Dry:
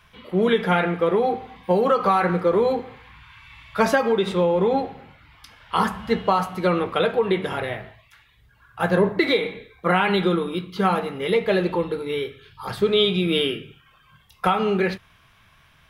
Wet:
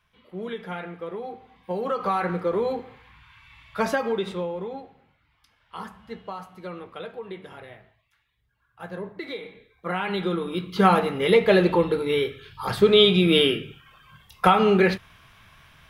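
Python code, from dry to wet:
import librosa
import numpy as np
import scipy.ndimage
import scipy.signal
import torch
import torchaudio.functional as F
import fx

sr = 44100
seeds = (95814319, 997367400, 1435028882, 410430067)

y = fx.gain(x, sr, db=fx.line((1.36, -14.0), (2.13, -5.5), (4.19, -5.5), (4.81, -16.0), (9.15, -16.0), (10.39, -4.5), (10.8, 3.0)))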